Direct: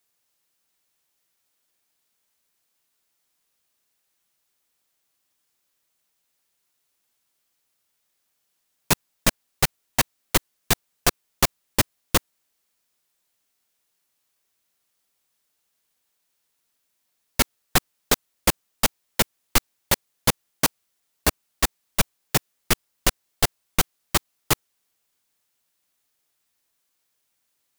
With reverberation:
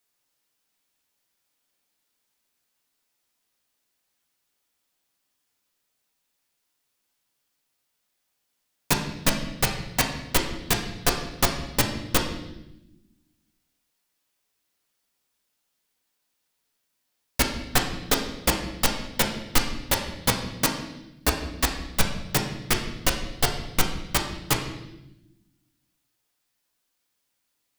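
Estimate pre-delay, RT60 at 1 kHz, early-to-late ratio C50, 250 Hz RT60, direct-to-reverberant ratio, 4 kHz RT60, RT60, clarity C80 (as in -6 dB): 4 ms, 0.80 s, 7.0 dB, 1.7 s, 1.5 dB, 0.90 s, 0.95 s, 9.5 dB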